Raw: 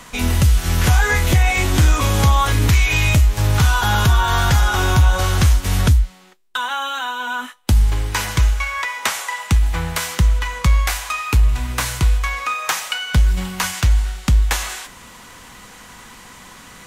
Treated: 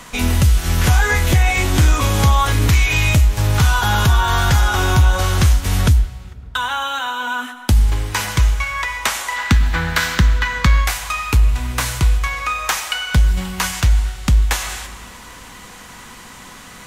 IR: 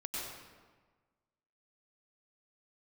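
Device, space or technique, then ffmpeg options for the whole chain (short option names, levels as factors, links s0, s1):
compressed reverb return: -filter_complex "[0:a]asplit=2[s0][s1];[1:a]atrim=start_sample=2205[s2];[s1][s2]afir=irnorm=-1:irlink=0,acompressor=threshold=0.0708:ratio=6,volume=0.447[s3];[s0][s3]amix=inputs=2:normalize=0,asettb=1/sr,asplit=3[s4][s5][s6];[s4]atrim=end=9.364[s7];[s5]atrim=start=9.36:end=10.85,asetpts=PTS-STARTPTS,afade=t=in:d=0.004:c=qsin,afade=t=out:st=1.486:d=0.004:c=qsin,equalizer=f=250:t=o:w=0.67:g=8,equalizer=f=1600:t=o:w=0.67:g=10,equalizer=f=4000:t=o:w=0.67:g=5,equalizer=f=10000:t=o:w=0.67:g=-7[s8];[s6]atrim=start=10.846[s9];[s7][s8]acrossfade=d=0.004:c1=hsin:c2=qsin[s10];[s10][s9]acrossfade=d=0.004:c1=qsin:c2=hsin"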